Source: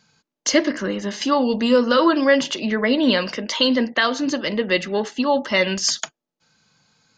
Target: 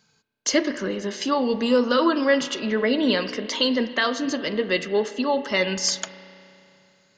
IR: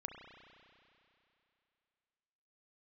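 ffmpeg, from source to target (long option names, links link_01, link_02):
-filter_complex "[0:a]equalizer=frequency=420:width_type=o:width=0.21:gain=6.5,asplit=2[link_01][link_02];[1:a]atrim=start_sample=2205,highshelf=frequency=6100:gain=11.5[link_03];[link_02][link_03]afir=irnorm=-1:irlink=0,volume=-3.5dB[link_04];[link_01][link_04]amix=inputs=2:normalize=0,volume=-7dB"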